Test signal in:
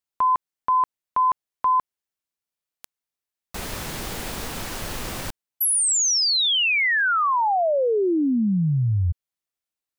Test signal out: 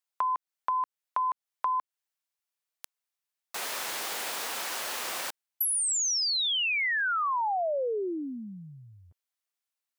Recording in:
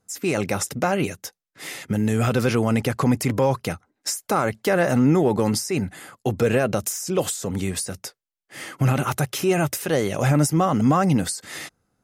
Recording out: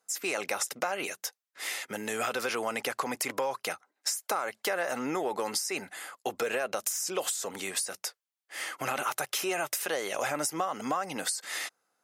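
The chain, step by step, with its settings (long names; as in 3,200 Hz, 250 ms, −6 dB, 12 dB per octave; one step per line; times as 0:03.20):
high-pass filter 640 Hz 12 dB per octave
downward compressor 6 to 1, threshold −27 dBFS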